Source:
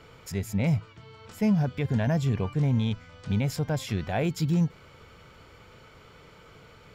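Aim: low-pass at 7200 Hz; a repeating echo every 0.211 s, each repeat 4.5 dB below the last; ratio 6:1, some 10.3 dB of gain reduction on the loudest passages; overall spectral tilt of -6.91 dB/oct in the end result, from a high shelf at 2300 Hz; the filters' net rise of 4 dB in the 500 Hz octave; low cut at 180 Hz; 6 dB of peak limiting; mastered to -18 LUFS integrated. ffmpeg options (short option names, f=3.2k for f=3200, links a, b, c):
-af "highpass=180,lowpass=7.2k,equalizer=f=500:t=o:g=5.5,highshelf=f=2.3k:g=-7,acompressor=threshold=-32dB:ratio=6,alimiter=level_in=4.5dB:limit=-24dB:level=0:latency=1,volume=-4.5dB,aecho=1:1:211|422|633|844|1055|1266|1477|1688|1899:0.596|0.357|0.214|0.129|0.0772|0.0463|0.0278|0.0167|0.01,volume=20dB"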